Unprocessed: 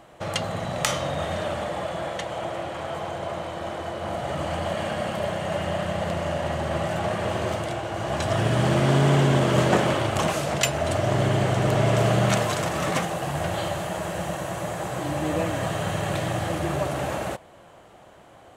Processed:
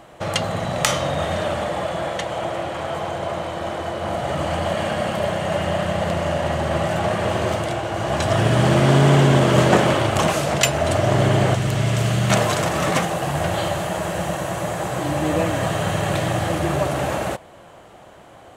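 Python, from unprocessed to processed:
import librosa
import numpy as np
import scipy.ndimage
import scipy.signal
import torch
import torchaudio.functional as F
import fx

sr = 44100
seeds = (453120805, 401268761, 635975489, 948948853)

y = fx.peak_eq(x, sr, hz=600.0, db=-10.0, octaves=2.9, at=(11.55, 12.3))
y = y * librosa.db_to_amplitude(5.0)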